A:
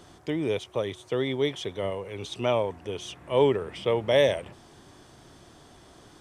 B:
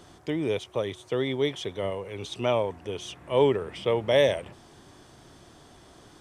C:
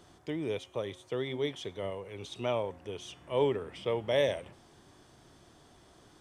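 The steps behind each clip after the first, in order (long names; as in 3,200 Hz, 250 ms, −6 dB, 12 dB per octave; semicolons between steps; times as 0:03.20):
no processing that can be heard
hum removal 268.6 Hz, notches 36; level −6.5 dB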